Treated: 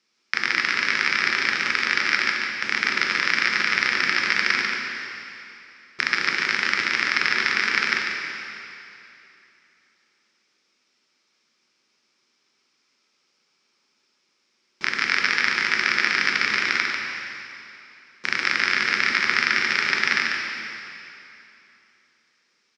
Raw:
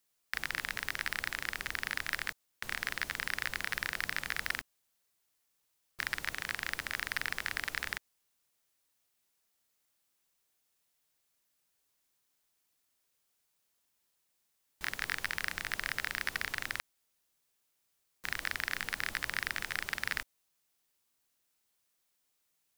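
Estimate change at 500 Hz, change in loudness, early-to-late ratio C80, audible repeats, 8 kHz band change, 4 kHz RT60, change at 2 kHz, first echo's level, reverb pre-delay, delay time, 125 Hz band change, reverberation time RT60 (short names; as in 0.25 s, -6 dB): +14.5 dB, +15.0 dB, 0.5 dB, 1, +8.5 dB, 2.7 s, +15.5 dB, -5.5 dB, 6 ms, 0.144 s, +6.0 dB, 2.9 s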